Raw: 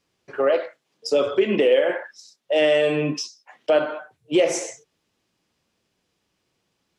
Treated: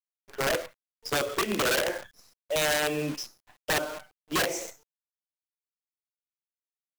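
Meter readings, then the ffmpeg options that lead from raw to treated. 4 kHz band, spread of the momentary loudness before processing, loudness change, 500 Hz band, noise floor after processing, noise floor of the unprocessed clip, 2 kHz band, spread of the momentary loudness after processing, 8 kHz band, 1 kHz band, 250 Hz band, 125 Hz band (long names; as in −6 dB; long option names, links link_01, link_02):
−1.0 dB, 17 LU, −7.0 dB, −11.5 dB, below −85 dBFS, −74 dBFS, −0.5 dB, 17 LU, +1.5 dB, −0.5 dB, −8.5 dB, −4.5 dB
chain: -af "acrusher=bits=6:dc=4:mix=0:aa=0.000001,aeval=exprs='(mod(4.47*val(0)+1,2)-1)/4.47':channel_layout=same,volume=-7.5dB"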